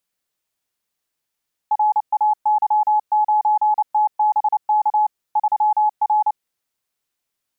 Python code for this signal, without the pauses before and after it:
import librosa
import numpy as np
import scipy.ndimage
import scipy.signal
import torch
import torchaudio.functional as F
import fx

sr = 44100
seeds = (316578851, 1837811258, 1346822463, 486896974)

y = fx.morse(sr, text='RAY9TBK 3R', wpm=29, hz=849.0, level_db=-13.0)